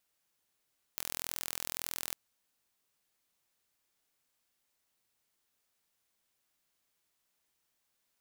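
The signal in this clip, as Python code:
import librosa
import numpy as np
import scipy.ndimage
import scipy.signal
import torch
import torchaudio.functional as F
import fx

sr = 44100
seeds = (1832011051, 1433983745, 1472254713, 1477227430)

y = 10.0 ** (-9.5 / 20.0) * (np.mod(np.arange(round(1.17 * sr)), round(sr / 41.8)) == 0)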